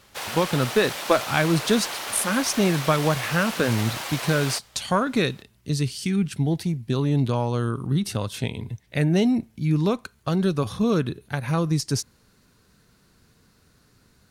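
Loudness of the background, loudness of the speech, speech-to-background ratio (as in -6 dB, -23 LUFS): -30.5 LUFS, -24.0 LUFS, 6.5 dB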